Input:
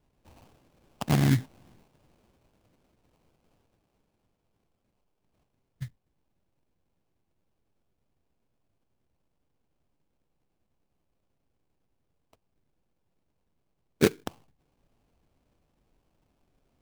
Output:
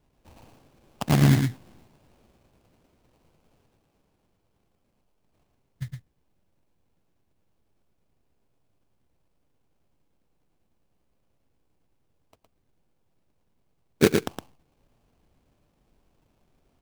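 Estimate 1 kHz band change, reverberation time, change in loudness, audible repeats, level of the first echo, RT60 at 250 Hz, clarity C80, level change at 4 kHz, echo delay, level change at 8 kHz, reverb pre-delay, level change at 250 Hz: +4.0 dB, none, +2.5 dB, 1, -5.0 dB, none, none, +4.0 dB, 0.113 s, +4.0 dB, none, +4.0 dB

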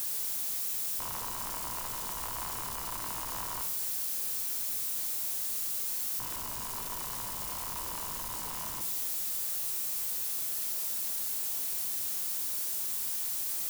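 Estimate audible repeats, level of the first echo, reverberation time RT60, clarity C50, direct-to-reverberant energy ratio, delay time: none, none, 0.80 s, 10.0 dB, 6.0 dB, none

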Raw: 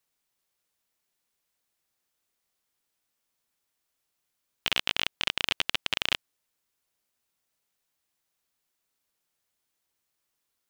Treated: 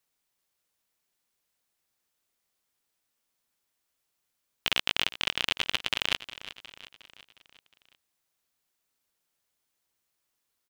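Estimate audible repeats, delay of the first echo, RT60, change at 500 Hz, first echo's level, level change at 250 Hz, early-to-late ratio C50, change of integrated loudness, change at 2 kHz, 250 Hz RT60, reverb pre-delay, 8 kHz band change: 4, 0.36 s, none, 0.0 dB, -15.0 dB, 0.0 dB, none, 0.0 dB, 0.0 dB, none, none, 0.0 dB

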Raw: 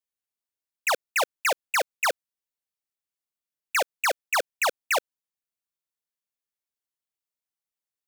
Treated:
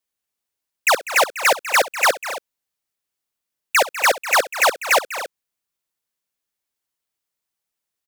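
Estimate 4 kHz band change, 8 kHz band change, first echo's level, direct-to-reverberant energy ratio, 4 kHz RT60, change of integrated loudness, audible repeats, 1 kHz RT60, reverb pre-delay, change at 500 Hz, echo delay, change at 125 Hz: +8.5 dB, +8.5 dB, -17.5 dB, none, none, +8.5 dB, 4, none, none, +8.5 dB, 64 ms, n/a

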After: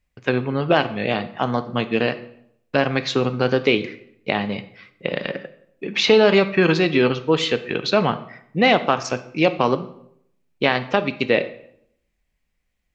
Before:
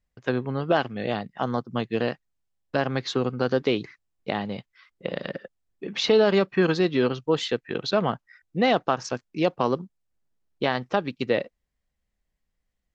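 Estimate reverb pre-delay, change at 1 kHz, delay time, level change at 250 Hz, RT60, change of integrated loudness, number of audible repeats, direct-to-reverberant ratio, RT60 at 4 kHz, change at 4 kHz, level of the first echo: 4 ms, +5.0 dB, none, +4.5 dB, 0.70 s, +5.5 dB, none, 10.0 dB, 0.55 s, +7.0 dB, none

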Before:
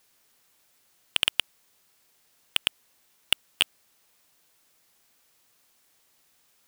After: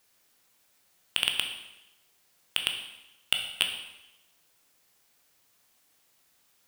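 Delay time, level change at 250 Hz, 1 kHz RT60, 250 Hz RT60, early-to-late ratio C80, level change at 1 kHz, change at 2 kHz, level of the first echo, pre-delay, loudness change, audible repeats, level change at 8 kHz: none, -1.5 dB, 0.90 s, 0.95 s, 9.0 dB, -1.5 dB, -1.5 dB, none, 6 ms, -2.5 dB, none, -1.5 dB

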